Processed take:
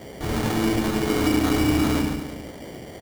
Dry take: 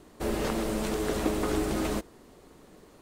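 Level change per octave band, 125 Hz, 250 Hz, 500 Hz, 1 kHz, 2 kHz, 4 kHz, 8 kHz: +11.0 dB, +9.5 dB, +3.5 dB, +6.5 dB, +8.5 dB, +9.0 dB, +5.5 dB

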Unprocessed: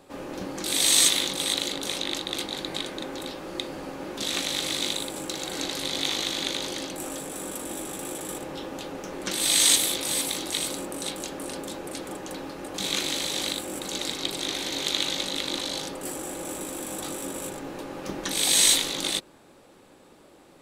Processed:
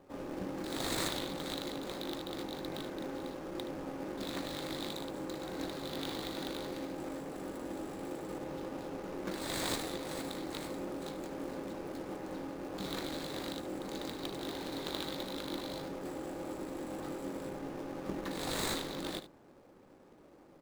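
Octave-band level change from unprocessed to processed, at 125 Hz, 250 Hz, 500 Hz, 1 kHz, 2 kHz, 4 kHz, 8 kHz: -3.0 dB, -4.0 dB, -5.0 dB, -6.0 dB, -11.5 dB, -17.0 dB, -22.0 dB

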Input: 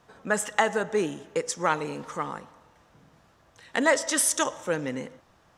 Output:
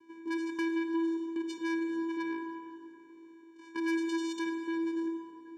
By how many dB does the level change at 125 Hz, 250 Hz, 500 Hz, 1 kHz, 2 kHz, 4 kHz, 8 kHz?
under -25 dB, +2.5 dB, -10.0 dB, -13.0 dB, -10.5 dB, -11.5 dB, under -25 dB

